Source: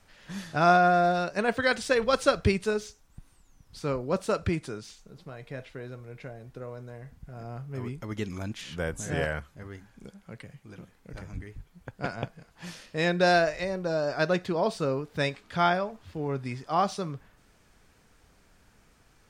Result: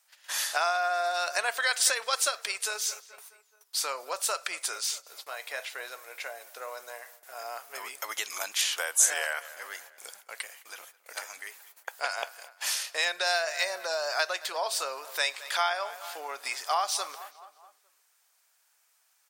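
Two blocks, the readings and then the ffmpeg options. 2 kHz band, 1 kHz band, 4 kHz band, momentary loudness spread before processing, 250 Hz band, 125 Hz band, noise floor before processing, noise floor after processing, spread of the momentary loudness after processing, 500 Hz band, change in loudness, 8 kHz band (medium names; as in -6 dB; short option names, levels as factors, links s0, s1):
+1.0 dB, -3.5 dB, +7.0 dB, 22 LU, under -25 dB, under -40 dB, -62 dBFS, -69 dBFS, 16 LU, -8.5 dB, -2.0 dB, +16.0 dB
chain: -filter_complex "[0:a]agate=range=0.112:threshold=0.00282:ratio=16:detection=peak,asplit=2[s0][s1];[s1]adelay=213,lowpass=f=3600:p=1,volume=0.0794,asplit=2[s2][s3];[s3]adelay=213,lowpass=f=3600:p=1,volume=0.54,asplit=2[s4][s5];[s5]adelay=213,lowpass=f=3600:p=1,volume=0.54,asplit=2[s6][s7];[s7]adelay=213,lowpass=f=3600:p=1,volume=0.54[s8];[s2][s4][s6][s8]amix=inputs=4:normalize=0[s9];[s0][s9]amix=inputs=2:normalize=0,acompressor=threshold=0.0282:ratio=12,highpass=f=690:w=0.5412,highpass=f=690:w=1.3066,aemphasis=mode=production:type=75fm,volume=2.82"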